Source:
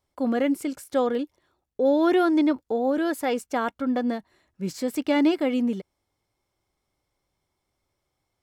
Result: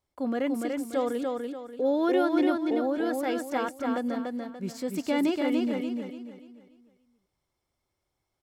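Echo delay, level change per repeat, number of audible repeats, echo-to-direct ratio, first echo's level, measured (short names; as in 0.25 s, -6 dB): 0.291 s, -9.0 dB, 4, -3.0 dB, -3.5 dB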